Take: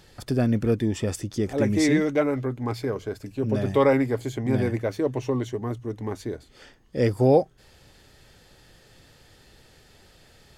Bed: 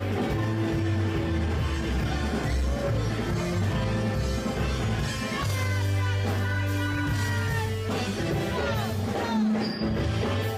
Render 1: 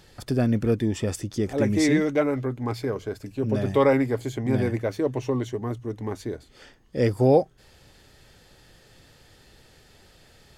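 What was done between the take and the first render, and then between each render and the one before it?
no audible change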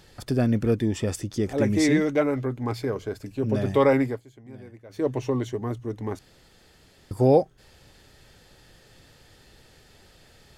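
4.06–5.04 s: dip -20 dB, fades 0.15 s; 6.19–7.11 s: room tone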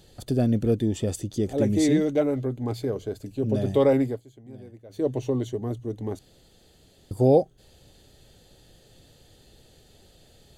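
high-order bell 1.5 kHz -9 dB; band-stop 5.3 kHz, Q 5.7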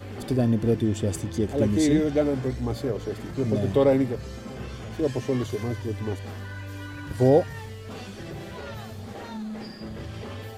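add bed -10 dB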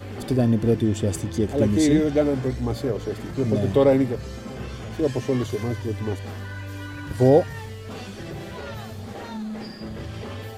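trim +2.5 dB

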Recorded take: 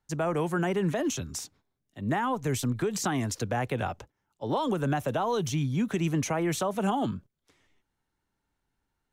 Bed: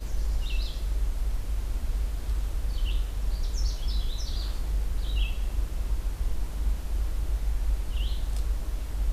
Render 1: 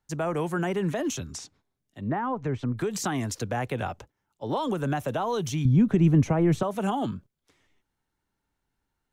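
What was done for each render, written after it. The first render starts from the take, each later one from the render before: 1.30–2.78 s: low-pass that closes with the level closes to 1.5 kHz, closed at -24.5 dBFS; 5.65–6.63 s: tilt EQ -3.5 dB/octave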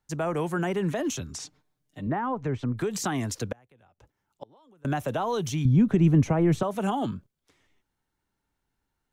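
1.39–2.07 s: comb 6.6 ms, depth 98%; 3.52–4.85 s: inverted gate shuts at -25 dBFS, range -30 dB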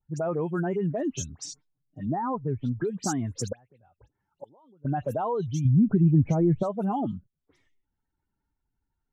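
spectral contrast enhancement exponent 1.7; phase dispersion highs, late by 86 ms, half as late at 2.8 kHz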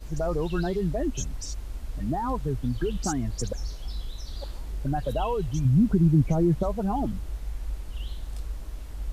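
add bed -5.5 dB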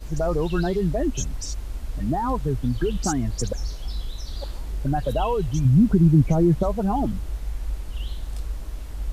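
trim +4 dB

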